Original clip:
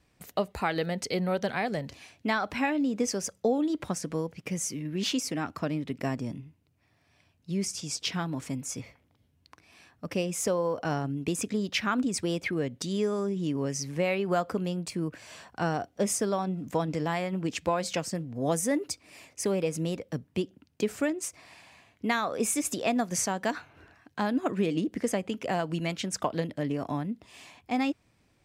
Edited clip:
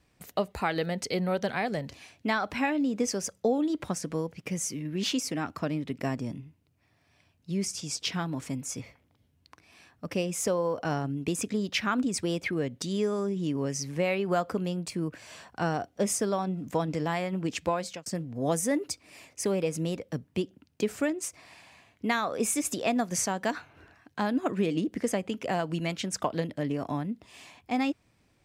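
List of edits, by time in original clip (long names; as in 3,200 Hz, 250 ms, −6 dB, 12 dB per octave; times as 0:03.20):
0:17.59–0:18.06: fade out equal-power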